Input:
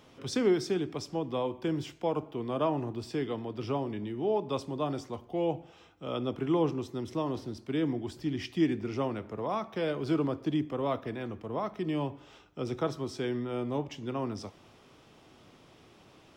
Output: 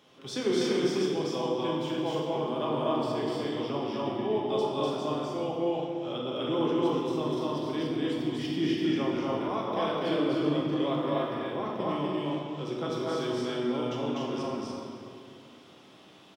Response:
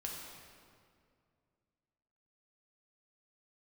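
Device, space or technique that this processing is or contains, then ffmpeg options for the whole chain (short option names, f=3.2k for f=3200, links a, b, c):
stadium PA: -filter_complex "[0:a]highpass=170,equalizer=f=3.4k:t=o:w=0.46:g=5.5,aecho=1:1:247.8|288.6:0.891|0.708[a];[1:a]atrim=start_sample=2205[b];[a][b]afir=irnorm=-1:irlink=0"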